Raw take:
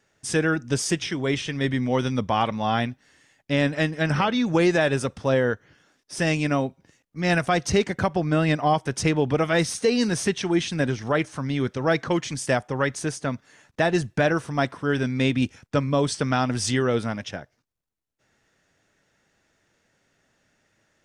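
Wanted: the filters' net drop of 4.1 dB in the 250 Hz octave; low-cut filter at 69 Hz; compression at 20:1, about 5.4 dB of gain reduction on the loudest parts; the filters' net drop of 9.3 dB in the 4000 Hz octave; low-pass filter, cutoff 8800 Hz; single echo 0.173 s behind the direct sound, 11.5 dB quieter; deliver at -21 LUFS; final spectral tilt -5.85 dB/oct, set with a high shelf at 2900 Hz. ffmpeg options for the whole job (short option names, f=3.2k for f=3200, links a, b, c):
-af "highpass=69,lowpass=8.8k,equalizer=f=250:t=o:g=-5.5,highshelf=f=2.9k:g=-6.5,equalizer=f=4k:t=o:g=-7,acompressor=threshold=-23dB:ratio=20,aecho=1:1:173:0.266,volume=9dB"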